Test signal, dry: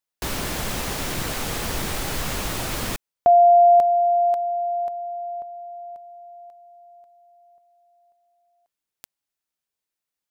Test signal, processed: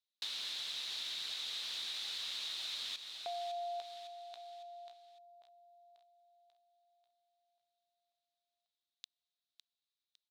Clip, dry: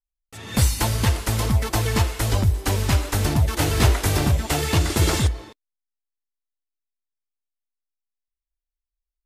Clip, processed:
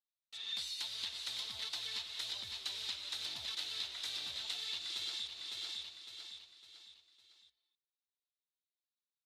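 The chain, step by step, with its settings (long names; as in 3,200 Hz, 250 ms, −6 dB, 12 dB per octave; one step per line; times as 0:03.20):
resonant band-pass 3,800 Hz, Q 6.2
repeating echo 556 ms, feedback 41%, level −11.5 dB
downward compressor 12 to 1, threshold −43 dBFS
level +5.5 dB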